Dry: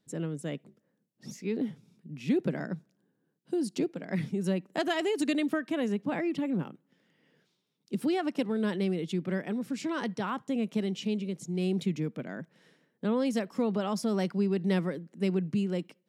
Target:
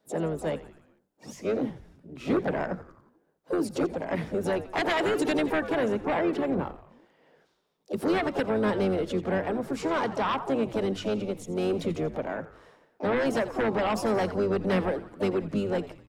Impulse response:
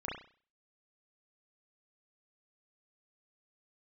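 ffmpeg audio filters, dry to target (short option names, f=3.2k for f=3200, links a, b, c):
-filter_complex "[0:a]asplit=4[a][b][c][d];[b]asetrate=22050,aresample=44100,atempo=2,volume=-15dB[e];[c]asetrate=55563,aresample=44100,atempo=0.793701,volume=-12dB[f];[d]asetrate=66075,aresample=44100,atempo=0.66742,volume=-14dB[g];[a][e][f][g]amix=inputs=4:normalize=0,asplit=6[h][i][j][k][l][m];[i]adelay=86,afreqshift=-100,volume=-15dB[n];[j]adelay=172,afreqshift=-200,volume=-20dB[o];[k]adelay=258,afreqshift=-300,volume=-25.1dB[p];[l]adelay=344,afreqshift=-400,volume=-30.1dB[q];[m]adelay=430,afreqshift=-500,volume=-35.1dB[r];[h][n][o][p][q][r]amix=inputs=6:normalize=0,acrossover=split=450|1200[s][t][u];[s]flanger=delay=18:depth=5.1:speed=0.25[v];[t]aeval=exprs='0.0631*sin(PI/2*3.16*val(0)/0.0631)':c=same[w];[v][w][u]amix=inputs=3:normalize=0"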